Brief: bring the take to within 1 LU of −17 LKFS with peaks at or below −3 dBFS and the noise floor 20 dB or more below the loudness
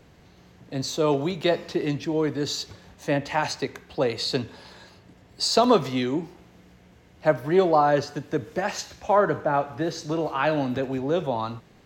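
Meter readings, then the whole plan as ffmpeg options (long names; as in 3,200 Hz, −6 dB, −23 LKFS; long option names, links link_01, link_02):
integrated loudness −25.0 LKFS; sample peak −6.5 dBFS; target loudness −17.0 LKFS
→ -af "volume=8dB,alimiter=limit=-3dB:level=0:latency=1"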